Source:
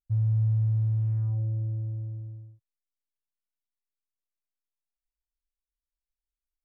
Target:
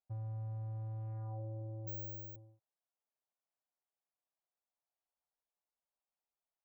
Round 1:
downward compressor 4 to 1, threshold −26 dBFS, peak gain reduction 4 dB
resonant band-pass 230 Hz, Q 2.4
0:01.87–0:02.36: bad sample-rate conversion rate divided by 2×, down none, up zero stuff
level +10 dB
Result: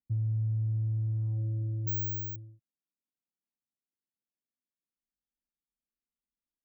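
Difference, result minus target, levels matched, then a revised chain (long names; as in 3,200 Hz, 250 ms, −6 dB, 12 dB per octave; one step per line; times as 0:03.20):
250 Hz band −2.5 dB
downward compressor 4 to 1, threshold −26 dBFS, peak gain reduction 4 dB
resonant band-pass 730 Hz, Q 2.4
0:01.87–0:02.36: bad sample-rate conversion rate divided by 2×, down none, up zero stuff
level +10 dB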